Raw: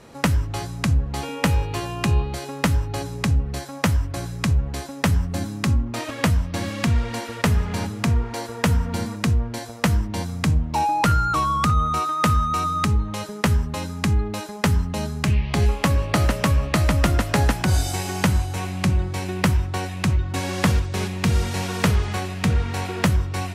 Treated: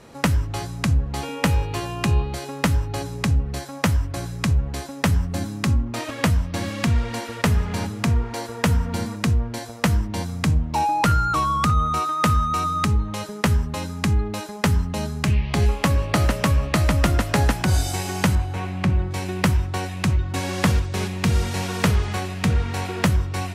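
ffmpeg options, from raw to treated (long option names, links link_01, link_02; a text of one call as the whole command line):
ffmpeg -i in.wav -filter_complex "[0:a]asettb=1/sr,asplit=3[link_01][link_02][link_03];[link_01]atrim=end=18.354[link_04];[link_02]atrim=start=18.35:end=19.11,asetpts=PTS-STARTPTS,afade=type=in:duration=0.004:curve=qsin,afade=type=out:start_time=0.756:duration=0.004:curve=qsin,bass=frequency=250:gain=0,treble=frequency=4000:gain=-12[link_05];[link_03]atrim=start=19.106[link_06];[link_04][link_05]acrossfade=duration=0.004:curve1=hsin:curve2=qsin[link_07];[link_07][link_06]acrossfade=duration=0.004:curve1=qsin:curve2=hsin" out.wav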